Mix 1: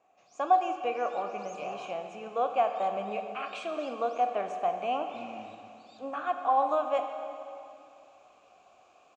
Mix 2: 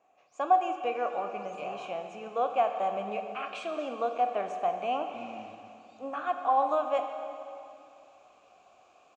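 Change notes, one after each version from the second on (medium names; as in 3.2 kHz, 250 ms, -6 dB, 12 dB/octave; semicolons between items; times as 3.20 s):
first sound -11.0 dB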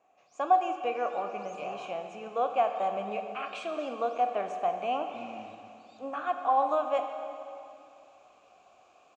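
first sound +6.0 dB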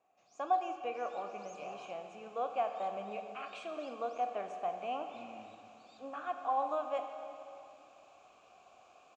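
speech -7.5 dB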